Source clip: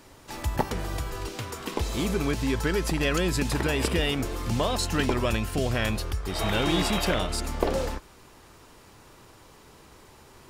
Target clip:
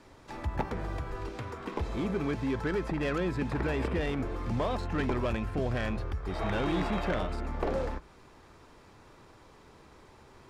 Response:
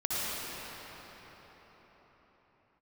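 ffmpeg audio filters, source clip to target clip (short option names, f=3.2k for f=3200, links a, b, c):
-filter_complex "[0:a]aemphasis=mode=production:type=50fm,bandreject=f=2.9k:w=16,bandreject=f=54.16:t=h:w=4,bandreject=f=108.32:t=h:w=4,bandreject=f=162.48:t=h:w=4,acrossover=split=650|2400[a][b][c];[c]acompressor=threshold=-42dB:ratio=6[d];[a][b][d]amix=inputs=3:normalize=0,asoftclip=type=tanh:threshold=-19.5dB,adynamicsmooth=sensitivity=3:basefreq=3k,volume=-2dB"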